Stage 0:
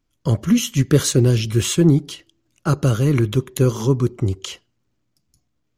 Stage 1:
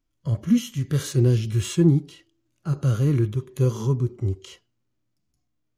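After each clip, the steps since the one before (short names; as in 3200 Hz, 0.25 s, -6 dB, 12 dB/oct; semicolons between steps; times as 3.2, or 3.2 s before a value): harmonic-percussive split percussive -15 dB; gain -2.5 dB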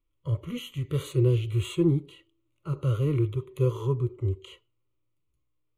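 high shelf 5700 Hz -7.5 dB; fixed phaser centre 1100 Hz, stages 8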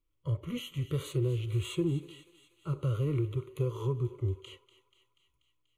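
compressor, threshold -24 dBFS, peak gain reduction 7 dB; thinning echo 0.242 s, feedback 67%, high-pass 710 Hz, level -15 dB; gain -2 dB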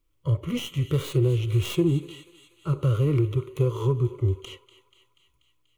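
tracing distortion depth 0.1 ms; gain +8 dB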